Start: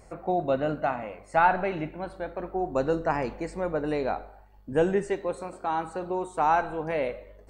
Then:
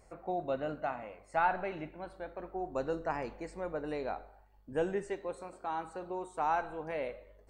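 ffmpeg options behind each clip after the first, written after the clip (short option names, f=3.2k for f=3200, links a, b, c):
-af "equalizer=f=160:w=0.73:g=-3.5,volume=-8dB"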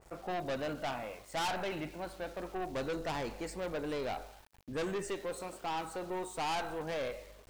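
-af "aeval=exprs='(tanh(70.8*val(0)+0.2)-tanh(0.2))/70.8':c=same,aeval=exprs='val(0)*gte(abs(val(0)),0.001)':c=same,adynamicequalizer=threshold=0.00126:dfrequency=2400:dqfactor=0.7:tfrequency=2400:tqfactor=0.7:attack=5:release=100:ratio=0.375:range=3.5:mode=boostabove:tftype=highshelf,volume=4.5dB"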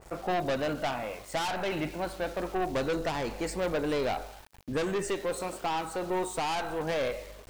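-af "alimiter=level_in=6.5dB:limit=-24dB:level=0:latency=1:release=396,volume=-6.5dB,volume=8dB"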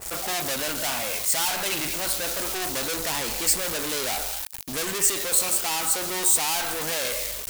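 -af "asoftclip=type=tanh:threshold=-38.5dB,crystalizer=i=9:c=0,volume=5.5dB"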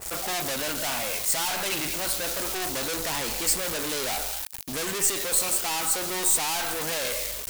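-af "aeval=exprs='(tanh(4.47*val(0)+0.2)-tanh(0.2))/4.47':c=same"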